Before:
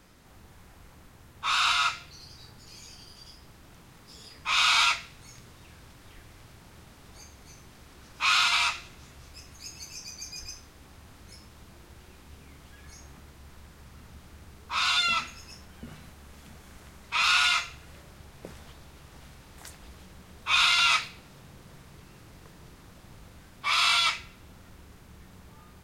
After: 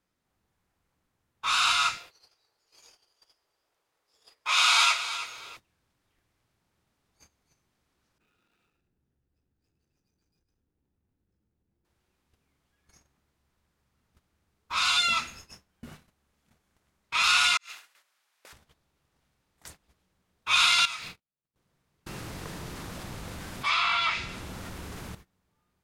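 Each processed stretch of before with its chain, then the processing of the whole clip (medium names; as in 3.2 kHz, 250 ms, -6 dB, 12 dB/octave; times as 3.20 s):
1.97–5.57 s: resonant low shelf 310 Hz -13.5 dB, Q 1.5 + feedback delay 319 ms, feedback 28%, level -12 dB
8.18–11.85 s: median filter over 41 samples + peaking EQ 630 Hz -7.5 dB 0.49 oct + compression 8:1, threshold -47 dBFS
17.57–18.53 s: high-pass 1.2 kHz + compressor with a negative ratio -47 dBFS, ratio -0.5
20.85–21.56 s: gate -47 dBFS, range -24 dB + compression 16:1, threshold -36 dBFS + waveshaping leveller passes 1
22.06–25.15 s: low-pass that closes with the level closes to 2.2 kHz, closed at -19.5 dBFS + level flattener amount 50%
whole clip: bass shelf 95 Hz -6 dB; gate -46 dBFS, range -23 dB; dynamic bell 8.9 kHz, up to +5 dB, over -44 dBFS, Q 0.97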